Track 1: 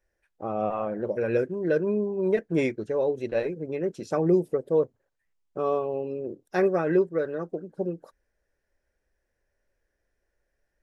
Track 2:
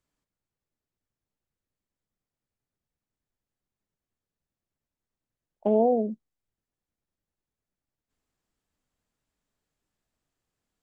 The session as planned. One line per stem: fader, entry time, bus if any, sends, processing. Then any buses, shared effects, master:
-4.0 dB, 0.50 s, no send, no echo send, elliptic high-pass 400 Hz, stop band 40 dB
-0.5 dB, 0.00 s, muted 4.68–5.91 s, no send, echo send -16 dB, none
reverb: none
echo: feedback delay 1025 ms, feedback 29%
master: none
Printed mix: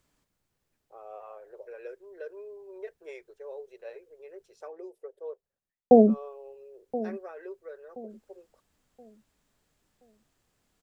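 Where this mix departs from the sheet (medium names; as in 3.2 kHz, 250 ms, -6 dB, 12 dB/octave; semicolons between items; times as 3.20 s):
stem 1 -4.0 dB -> -15.5 dB; stem 2 -0.5 dB -> +10.0 dB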